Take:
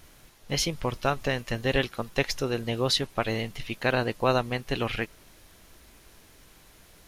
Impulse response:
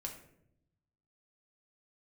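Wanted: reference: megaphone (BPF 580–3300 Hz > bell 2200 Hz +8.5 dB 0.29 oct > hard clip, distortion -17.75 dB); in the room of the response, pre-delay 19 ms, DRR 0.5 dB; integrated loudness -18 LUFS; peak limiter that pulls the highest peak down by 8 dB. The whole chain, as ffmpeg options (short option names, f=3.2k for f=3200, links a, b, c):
-filter_complex "[0:a]alimiter=limit=-18dB:level=0:latency=1,asplit=2[a][b];[1:a]atrim=start_sample=2205,adelay=19[c];[b][c]afir=irnorm=-1:irlink=0,volume=1.5dB[d];[a][d]amix=inputs=2:normalize=0,highpass=580,lowpass=3.3k,equalizer=f=2.2k:t=o:w=0.29:g=8.5,asoftclip=type=hard:threshold=-22.5dB,volume=13.5dB"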